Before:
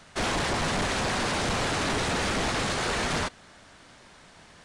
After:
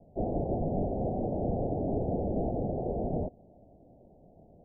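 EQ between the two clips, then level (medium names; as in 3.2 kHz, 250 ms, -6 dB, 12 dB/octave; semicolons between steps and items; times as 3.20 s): steep low-pass 740 Hz 72 dB/octave; 0.0 dB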